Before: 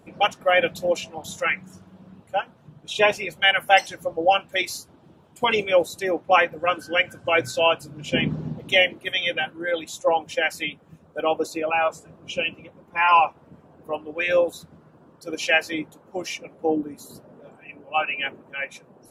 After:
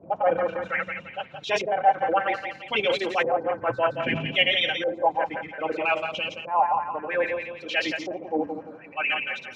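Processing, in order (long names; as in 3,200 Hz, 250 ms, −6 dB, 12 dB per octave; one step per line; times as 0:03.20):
feedback delay that plays each chunk backwards 171 ms, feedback 61%, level −7 dB
high-pass filter 82 Hz 24 dB per octave
auto-filter low-pass saw up 0.31 Hz 600–5,700 Hz
phase-vocoder stretch with locked phases 0.5×
transient designer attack −7 dB, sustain +2 dB
level −2 dB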